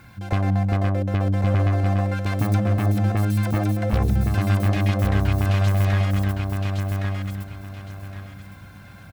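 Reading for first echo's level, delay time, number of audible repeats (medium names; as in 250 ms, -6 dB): -4.0 dB, 1114 ms, 3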